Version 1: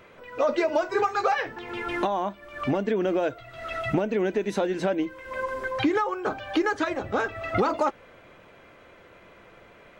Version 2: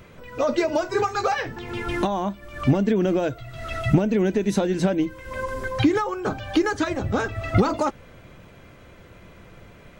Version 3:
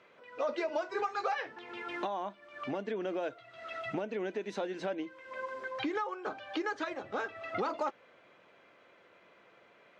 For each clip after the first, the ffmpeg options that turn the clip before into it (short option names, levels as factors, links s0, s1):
-af "bass=f=250:g=14,treble=f=4000:g=9"
-af "highpass=450,lowpass=3900,volume=0.355"